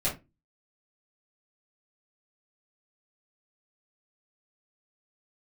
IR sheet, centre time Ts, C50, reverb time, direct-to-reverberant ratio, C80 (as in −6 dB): 24 ms, 10.0 dB, 0.25 s, −8.5 dB, 19.0 dB